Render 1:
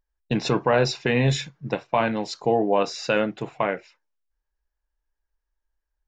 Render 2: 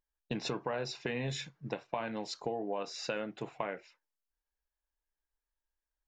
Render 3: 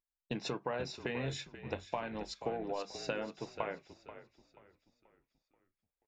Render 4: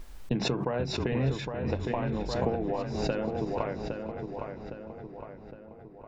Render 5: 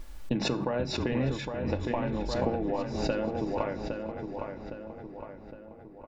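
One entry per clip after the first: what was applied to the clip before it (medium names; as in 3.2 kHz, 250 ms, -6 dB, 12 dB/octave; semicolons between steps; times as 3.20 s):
bass shelf 130 Hz -6.5 dB; compression 6:1, threshold -26 dBFS, peak gain reduction 10.5 dB; trim -6.5 dB
hum notches 50/100/150/200 Hz; on a send: frequency-shifting echo 483 ms, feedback 44%, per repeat -44 Hz, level -9 dB; on the sum: upward expansion 1.5:1, over -51 dBFS
tilt EQ -3 dB/octave; on a send: filtered feedback delay 811 ms, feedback 52%, low-pass 3 kHz, level -6 dB; on the sum: swell ahead of each attack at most 41 dB/s; trim +3 dB
comb 3.5 ms, depth 30%; reverberation RT60 0.55 s, pre-delay 20 ms, DRR 16 dB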